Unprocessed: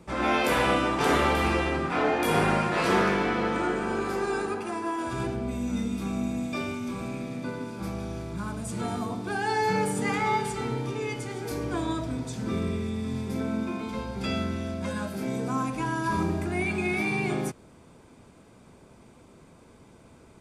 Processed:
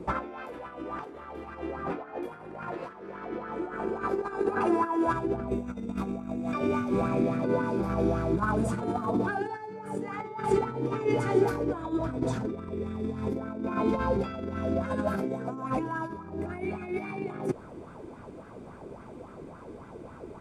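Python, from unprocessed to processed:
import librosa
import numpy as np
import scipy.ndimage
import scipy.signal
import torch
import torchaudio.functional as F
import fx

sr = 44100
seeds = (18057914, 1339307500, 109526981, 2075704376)

y = fx.high_shelf(x, sr, hz=2400.0, db=-11.5)
y = fx.over_compress(y, sr, threshold_db=-34.0, ratio=-0.5)
y = fx.bell_lfo(y, sr, hz=3.6, low_hz=330.0, high_hz=1500.0, db=13)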